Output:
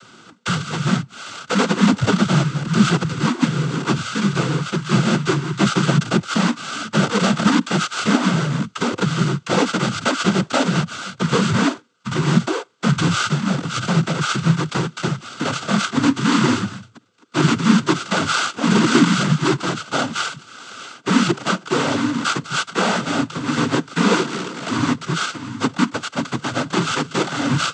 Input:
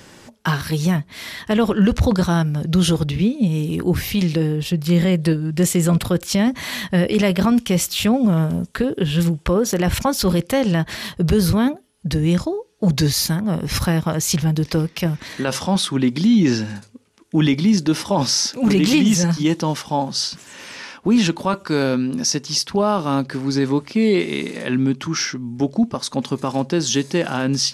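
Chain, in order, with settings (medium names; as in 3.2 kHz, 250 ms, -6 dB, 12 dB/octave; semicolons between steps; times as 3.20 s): sorted samples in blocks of 32 samples; noise-vocoded speech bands 16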